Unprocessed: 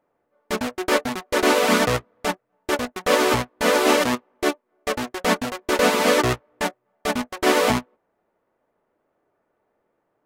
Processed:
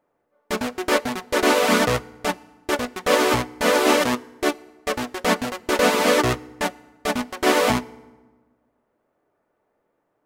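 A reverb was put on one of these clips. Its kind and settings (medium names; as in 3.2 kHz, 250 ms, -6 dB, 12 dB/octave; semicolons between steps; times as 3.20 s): FDN reverb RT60 1.3 s, low-frequency decay 1.35×, high-frequency decay 0.65×, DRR 20 dB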